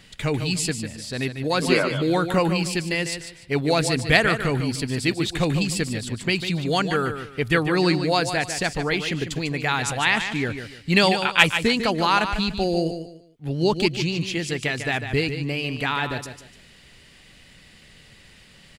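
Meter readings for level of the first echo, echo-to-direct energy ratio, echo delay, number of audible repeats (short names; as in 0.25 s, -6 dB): -9.0 dB, -8.5 dB, 0.148 s, 3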